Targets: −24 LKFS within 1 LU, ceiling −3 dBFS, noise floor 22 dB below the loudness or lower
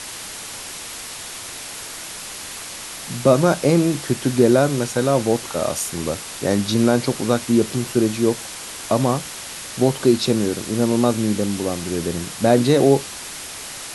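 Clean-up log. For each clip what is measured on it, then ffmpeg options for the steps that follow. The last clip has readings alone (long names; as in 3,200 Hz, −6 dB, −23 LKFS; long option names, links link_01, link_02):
background noise floor −34 dBFS; target noise floor −43 dBFS; integrated loudness −21.0 LKFS; sample peak −2.0 dBFS; target loudness −24.0 LKFS
→ -af "afftdn=noise_reduction=9:noise_floor=-34"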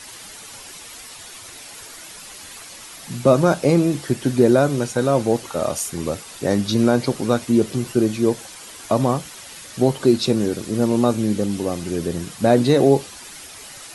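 background noise floor −39 dBFS; target noise floor −42 dBFS
→ -af "afftdn=noise_reduction=6:noise_floor=-39"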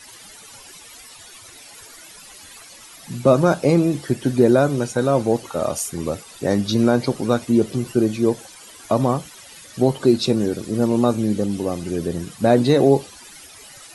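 background noise floor −43 dBFS; integrated loudness −19.5 LKFS; sample peak −2.5 dBFS; target loudness −24.0 LKFS
→ -af "volume=-4.5dB"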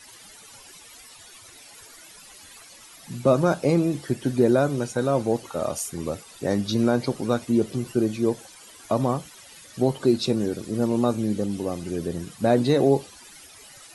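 integrated loudness −24.0 LKFS; sample peak −7.0 dBFS; background noise floor −48 dBFS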